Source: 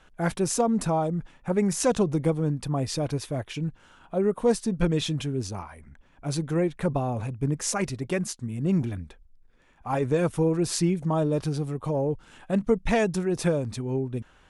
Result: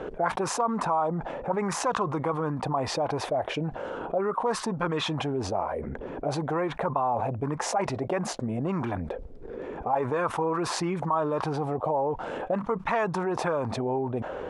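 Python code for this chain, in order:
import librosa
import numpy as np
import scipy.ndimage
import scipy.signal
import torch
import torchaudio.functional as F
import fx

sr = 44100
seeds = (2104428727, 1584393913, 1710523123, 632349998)

y = fx.low_shelf(x, sr, hz=110.0, db=6.5)
y = fx.auto_wah(y, sr, base_hz=410.0, top_hz=1100.0, q=3.9, full_db=-19.5, direction='up')
y = fx.env_flatten(y, sr, amount_pct=70)
y = y * 10.0 ** (5.0 / 20.0)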